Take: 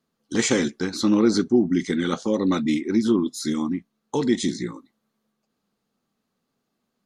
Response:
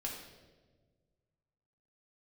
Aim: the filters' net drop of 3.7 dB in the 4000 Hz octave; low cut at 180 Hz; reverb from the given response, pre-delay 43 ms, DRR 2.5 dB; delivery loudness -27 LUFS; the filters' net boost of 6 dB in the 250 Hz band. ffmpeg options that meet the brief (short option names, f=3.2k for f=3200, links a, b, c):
-filter_complex "[0:a]highpass=180,equalizer=f=250:t=o:g=8.5,equalizer=f=4k:t=o:g=-4.5,asplit=2[a][b];[1:a]atrim=start_sample=2205,adelay=43[c];[b][c]afir=irnorm=-1:irlink=0,volume=-3dB[d];[a][d]amix=inputs=2:normalize=0,volume=-11.5dB"